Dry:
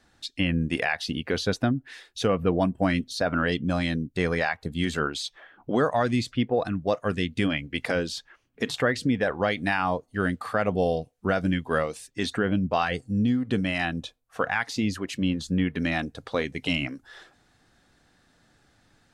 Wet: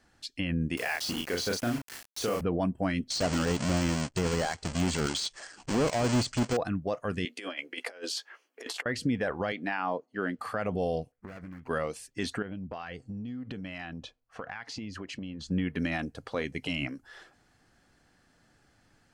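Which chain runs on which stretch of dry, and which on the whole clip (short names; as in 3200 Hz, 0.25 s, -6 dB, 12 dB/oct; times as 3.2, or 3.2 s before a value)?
0.77–2.41 tone controls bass -7 dB, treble +9 dB + requantised 6-bit, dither none + doubler 34 ms -3.5 dB
3.1–6.57 half-waves squared off + steep low-pass 8800 Hz 96 dB/oct + high shelf 3500 Hz +12 dB
7.25–8.86 HPF 370 Hz 24 dB/oct + doubler 16 ms -8.5 dB + negative-ratio compressor -34 dBFS, ratio -0.5
9.52–10.39 Chebyshev high-pass 280 Hz + air absorption 130 m
11.12–11.68 median filter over 41 samples + band shelf 1600 Hz +9 dB 1.3 oct + compressor 10:1, threshold -37 dBFS
12.42–15.51 LPF 5600 Hz + compressor 10:1, threshold -32 dBFS
whole clip: de-esser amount 55%; notch 3700 Hz, Q 8.7; limiter -17 dBFS; gain -2.5 dB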